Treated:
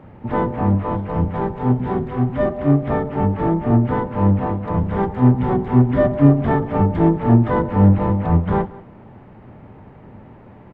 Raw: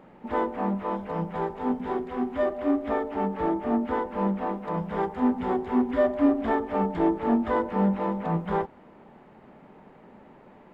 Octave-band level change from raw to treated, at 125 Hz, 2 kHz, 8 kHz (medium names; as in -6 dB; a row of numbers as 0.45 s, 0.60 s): +19.5 dB, +4.5 dB, no reading